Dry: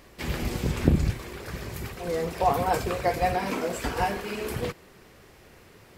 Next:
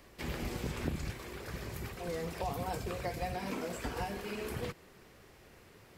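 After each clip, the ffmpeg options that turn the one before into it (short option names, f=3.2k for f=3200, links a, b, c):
-filter_complex "[0:a]acrossover=split=260|810|2400[a][b][c][d];[a]acompressor=threshold=-31dB:ratio=4[e];[b]acompressor=threshold=-35dB:ratio=4[f];[c]acompressor=threshold=-40dB:ratio=4[g];[d]acompressor=threshold=-42dB:ratio=4[h];[e][f][g][h]amix=inputs=4:normalize=0,volume=-5.5dB"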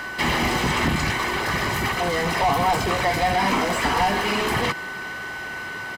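-filter_complex "[0:a]aeval=exprs='val(0)+0.00282*sin(2*PI*1500*n/s)':c=same,asplit=2[a][b];[b]highpass=f=720:p=1,volume=26dB,asoftclip=type=tanh:threshold=-20.5dB[c];[a][c]amix=inputs=2:normalize=0,lowpass=f=2.5k:p=1,volume=-6dB,aecho=1:1:1:0.51,volume=8.5dB"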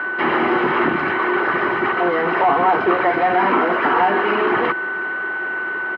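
-af "highpass=280,equalizer=f=360:t=q:w=4:g=10,equalizer=f=1.4k:t=q:w=4:g=8,equalizer=f=2.1k:t=q:w=4:g=-5,lowpass=f=2.4k:w=0.5412,lowpass=f=2.4k:w=1.3066,volume=4dB"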